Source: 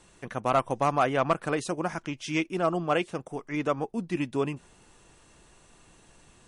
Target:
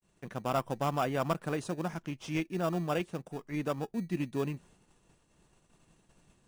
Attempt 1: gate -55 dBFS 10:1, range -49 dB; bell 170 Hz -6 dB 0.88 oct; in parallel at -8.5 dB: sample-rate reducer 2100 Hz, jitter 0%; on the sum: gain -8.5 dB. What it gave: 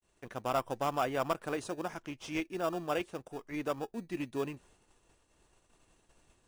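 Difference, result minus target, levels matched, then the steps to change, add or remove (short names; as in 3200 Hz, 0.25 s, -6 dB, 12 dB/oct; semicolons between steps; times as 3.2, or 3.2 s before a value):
125 Hz band -7.5 dB
change: bell 170 Hz +6 dB 0.88 oct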